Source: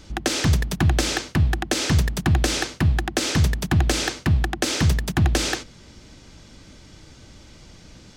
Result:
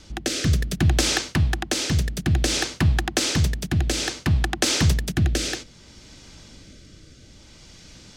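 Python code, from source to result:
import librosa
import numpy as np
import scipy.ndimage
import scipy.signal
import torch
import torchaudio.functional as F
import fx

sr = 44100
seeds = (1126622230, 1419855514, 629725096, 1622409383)

y = fx.high_shelf(x, sr, hz=7200.0, db=-5.5)
y = fx.rotary(y, sr, hz=0.6)
y = fx.high_shelf(y, sr, hz=3200.0, db=8.5)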